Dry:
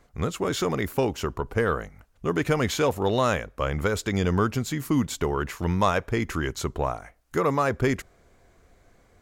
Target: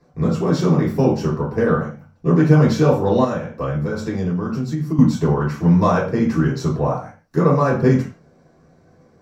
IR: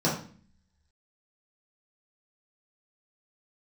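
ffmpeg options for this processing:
-filter_complex "[1:a]atrim=start_sample=2205,afade=t=out:st=0.23:d=0.01,atrim=end_sample=10584[s0];[0:a][s0]afir=irnorm=-1:irlink=0,asettb=1/sr,asplit=3[s1][s2][s3];[s1]atrim=end=3.244[s4];[s2]atrim=start=3.24:end=4.99,asetpts=PTS-STARTPTS,afade=t=in:d=0.004:c=qsin,afade=t=out:st=1.746:d=0.004:c=qsin,acompressor=threshold=0.316:ratio=6[s5];[s3]atrim=start=4.986[s6];[s4][s5]acrossfade=d=0.004:c1=hsin:c2=qsin[s7];[s7][s6]acrossfade=d=0.004:c1=qsin:c2=hsin,volume=0.335"

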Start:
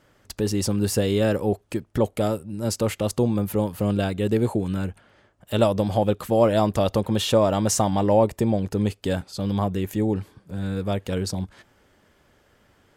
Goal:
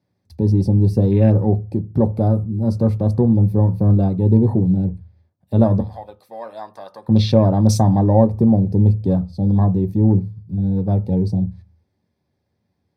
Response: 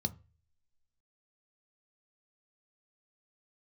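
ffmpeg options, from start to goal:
-filter_complex "[0:a]afwtdn=0.0251,asettb=1/sr,asplit=3[s0][s1][s2];[s0]atrim=end=5.804[s3];[s1]atrim=start=5.8:end=7.08,asetpts=PTS-STARTPTS,afade=t=in:d=0.004:c=qsin,afade=t=out:st=1.276:d=0.004:c=qsin,highpass=1400[s4];[s2]atrim=start=7.076[s5];[s3][s4]acrossfade=d=0.004:c1=hsin:c2=qsin[s6];[s6][s5]acrossfade=d=0.004:c1=qsin:c2=hsin[s7];[1:a]atrim=start_sample=2205,afade=t=out:st=0.43:d=0.01,atrim=end_sample=19404[s8];[s7][s8]afir=irnorm=-1:irlink=0,volume=0.708"

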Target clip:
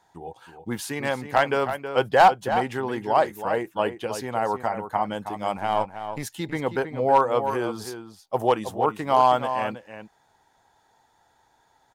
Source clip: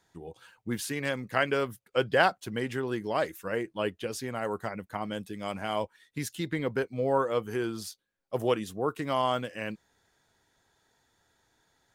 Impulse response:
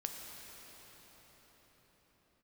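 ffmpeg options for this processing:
-filter_complex "[0:a]asettb=1/sr,asplit=3[s0][s1][s2];[s0]atrim=end=5.574[s3];[s1]atrim=start=5.57:end=6.23,asetpts=PTS-STARTPTS,afade=t=in:d=0.004:c=qsin,afade=t=out:st=0.656:d=0.004:c=qsin,aeval=exprs='if(lt(val(0),0),0.447*val(0),val(0))':c=same[s4];[s2]atrim=start=6.226[s5];[s3][s4]acrossfade=d=0.004:c1=hsin:c2=qsin[s6];[s6][s5]acrossfade=d=0.004:c1=qsin:c2=hsin,equalizer=f=840:t=o:w=0.75:g=13.5,volume=3.16,asoftclip=hard,volume=0.316,asplit=2[s7][s8];[s8]adelay=320.7,volume=0.355,highshelf=f=4000:g=-7.22[s9];[s7][s9]amix=inputs=2:normalize=0,volume=1.19"

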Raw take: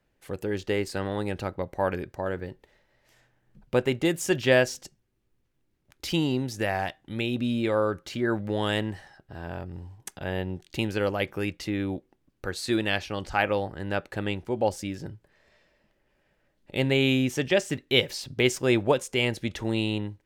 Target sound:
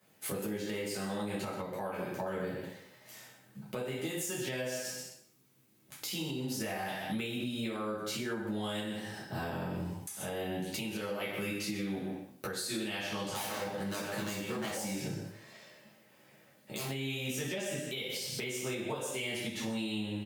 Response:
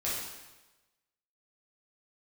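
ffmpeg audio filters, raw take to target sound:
-filter_complex "[0:a]aecho=1:1:126:0.282,asettb=1/sr,asplit=3[s0][s1][s2];[s0]atrim=end=13.234[s3];[s1]atrim=start=13.23:end=16.9,asetpts=PTS-STARTPTS,afade=t=in:d=0.004:c=qsin,afade=t=out:st=3.666:d=0.004:c=qsin,aeval=exprs='0.0562*(abs(mod(val(0)/0.0562+3,4)-2)-1)':c=same[s4];[s2]atrim=start=16.896[s5];[s3][s4]acrossfade=d=0.004:c1=hsin:c2=qsin[s6];[s6][s5]acrossfade=d=0.004:c1=qsin:c2=hsin,highpass=f=120:w=0.5412,highpass=f=120:w=1.3066,aemphasis=mode=production:type=50kf[s7];[1:a]atrim=start_sample=2205,asetrate=83790,aresample=44100[s8];[s7][s8]afir=irnorm=-1:irlink=0,acompressor=threshold=0.0141:ratio=6,alimiter=level_in=3.16:limit=0.0631:level=0:latency=1:release=433,volume=0.316,volume=2.37"

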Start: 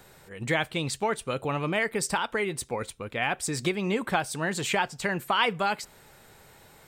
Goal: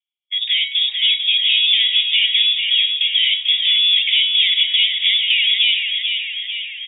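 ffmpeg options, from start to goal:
-filter_complex "[0:a]agate=range=0.00141:threshold=0.00708:ratio=16:detection=peak,lowshelf=f=290:t=q:w=3:g=-10.5,bandreject=f=261.5:t=h:w=4,bandreject=f=523:t=h:w=4,bandreject=f=784.5:t=h:w=4,bandreject=f=1046:t=h:w=4,bandreject=f=1307.5:t=h:w=4,bandreject=f=1569:t=h:w=4,bandreject=f=1830.5:t=h:w=4,apsyclip=20,asoftclip=type=tanh:threshold=0.473,asuperstop=centerf=3000:order=12:qfactor=0.84,asplit=2[s0][s1];[s1]asplit=8[s2][s3][s4][s5][s6][s7][s8][s9];[s2]adelay=443,afreqshift=34,volume=0.531[s10];[s3]adelay=886,afreqshift=68,volume=0.313[s11];[s4]adelay=1329,afreqshift=102,volume=0.184[s12];[s5]adelay=1772,afreqshift=136,volume=0.11[s13];[s6]adelay=2215,afreqshift=170,volume=0.0646[s14];[s7]adelay=2658,afreqshift=204,volume=0.038[s15];[s8]adelay=3101,afreqshift=238,volume=0.0224[s16];[s9]adelay=3544,afreqshift=272,volume=0.0132[s17];[s10][s11][s12][s13][s14][s15][s16][s17]amix=inputs=8:normalize=0[s18];[s0][s18]amix=inputs=2:normalize=0,lowpass=f=3200:t=q:w=0.5098,lowpass=f=3200:t=q:w=0.6013,lowpass=f=3200:t=q:w=0.9,lowpass=f=3200:t=q:w=2.563,afreqshift=-3800,volume=0.501"

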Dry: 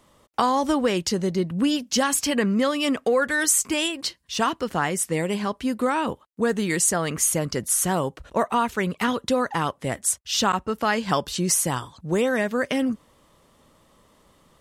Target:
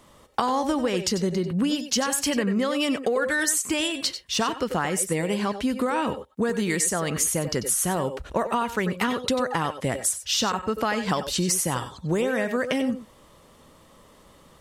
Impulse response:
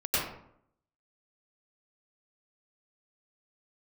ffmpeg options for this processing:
-filter_complex "[0:a]acompressor=threshold=0.0501:ratio=5,asplit=2[s0][s1];[1:a]atrim=start_sample=2205,atrim=end_sample=4410[s2];[s1][s2]afir=irnorm=-1:irlink=0,volume=0.237[s3];[s0][s3]amix=inputs=2:normalize=0,volume=1.41"

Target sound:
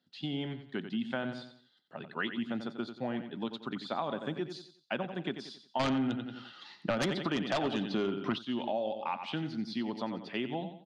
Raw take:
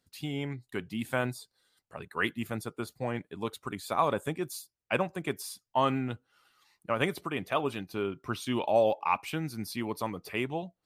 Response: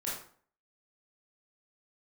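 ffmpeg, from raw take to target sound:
-filter_complex "[0:a]highpass=f=150:w=0.5412,highpass=f=150:w=1.3066,equalizer=f=230:t=q:w=4:g=4,equalizer=f=460:t=q:w=4:g=-6,equalizer=f=1100:t=q:w=4:g=-8,equalizer=f=2300:t=q:w=4:g=-9,equalizer=f=3300:t=q:w=4:g=5,lowpass=f=4400:w=0.5412,lowpass=f=4400:w=1.3066,aecho=1:1:90|180|270|360:0.299|0.107|0.0387|0.0139,asplit=3[s0][s1][s2];[s0]afade=t=out:st=5.79:d=0.02[s3];[s1]aeval=exprs='0.237*sin(PI/2*3.98*val(0)/0.237)':c=same,afade=t=in:st=5.79:d=0.02,afade=t=out:st=8.37:d=0.02[s4];[s2]afade=t=in:st=8.37:d=0.02[s5];[s3][s4][s5]amix=inputs=3:normalize=0,acompressor=threshold=0.0282:ratio=6,volume=1.12"

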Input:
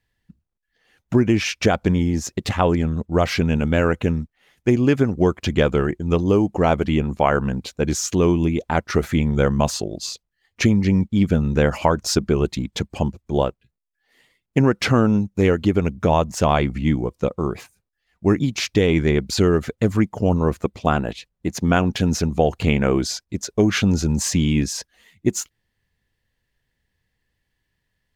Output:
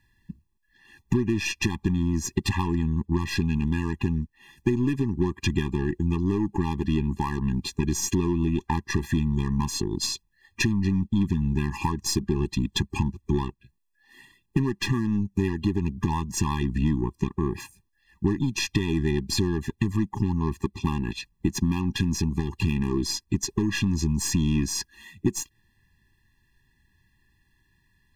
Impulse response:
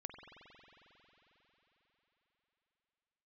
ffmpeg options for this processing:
-af "volume=2.51,asoftclip=hard,volume=0.398,aeval=exprs='0.422*(cos(1*acos(clip(val(0)/0.422,-1,1)))-cos(1*PI/2))+0.0188*(cos(5*acos(clip(val(0)/0.422,-1,1)))-cos(5*PI/2))+0.0237*(cos(8*acos(clip(val(0)/0.422,-1,1)))-cos(8*PI/2))':c=same,acompressor=threshold=0.0447:ratio=12,afftfilt=real='re*eq(mod(floor(b*sr/1024/400),2),0)':imag='im*eq(mod(floor(b*sr/1024/400),2),0)':win_size=1024:overlap=0.75,volume=2.24"

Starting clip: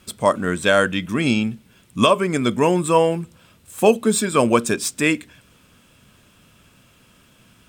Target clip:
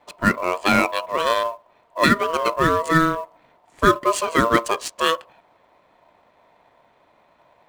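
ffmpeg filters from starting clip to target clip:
-af "aeval=exprs='val(0)*sin(2*PI*810*n/s)':c=same,adynamicsmooth=sensitivity=4:basefreq=2100,acrusher=bits=7:mode=log:mix=0:aa=0.000001,volume=1.19"

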